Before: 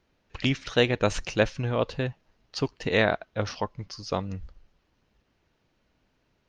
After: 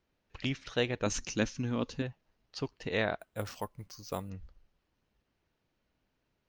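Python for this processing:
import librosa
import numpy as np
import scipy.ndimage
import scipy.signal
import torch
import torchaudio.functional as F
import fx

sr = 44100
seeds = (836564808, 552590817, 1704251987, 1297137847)

y = fx.graphic_eq_15(x, sr, hz=(250, 630, 6300), db=(11, -7, 12), at=(1.06, 2.02))
y = fx.resample_bad(y, sr, factor=4, down='none', up='hold', at=(3.19, 4.3))
y = y * 10.0 ** (-8.5 / 20.0)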